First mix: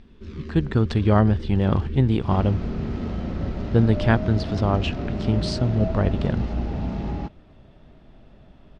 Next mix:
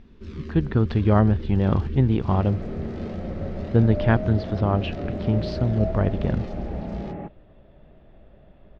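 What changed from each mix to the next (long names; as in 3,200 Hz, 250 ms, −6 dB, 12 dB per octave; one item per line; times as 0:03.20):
speech: add high-frequency loss of the air 240 metres
second sound: add loudspeaker in its box 160–2,100 Hz, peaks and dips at 260 Hz −7 dB, 550 Hz +5 dB, 970 Hz −7 dB, 1,400 Hz −6 dB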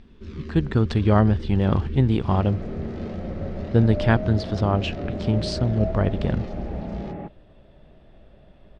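speech: remove high-frequency loss of the air 240 metres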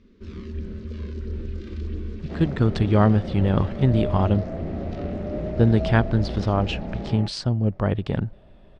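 speech: entry +1.85 s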